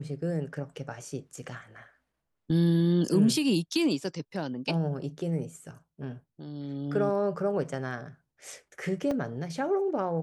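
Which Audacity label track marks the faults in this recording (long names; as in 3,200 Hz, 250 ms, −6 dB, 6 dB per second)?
9.110000	9.110000	drop-out 3 ms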